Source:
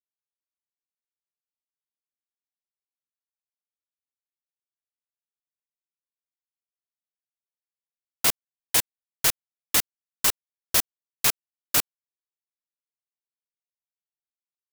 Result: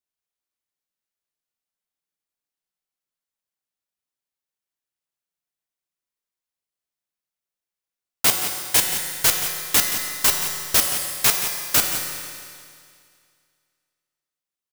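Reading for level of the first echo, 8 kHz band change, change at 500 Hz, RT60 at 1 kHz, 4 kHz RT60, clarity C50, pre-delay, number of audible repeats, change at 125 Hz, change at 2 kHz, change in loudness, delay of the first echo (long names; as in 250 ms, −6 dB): −11.0 dB, +5.5 dB, +5.5 dB, 2.2 s, 2.2 s, 3.5 dB, 5 ms, 1, +5.5 dB, +6.0 dB, +4.5 dB, 175 ms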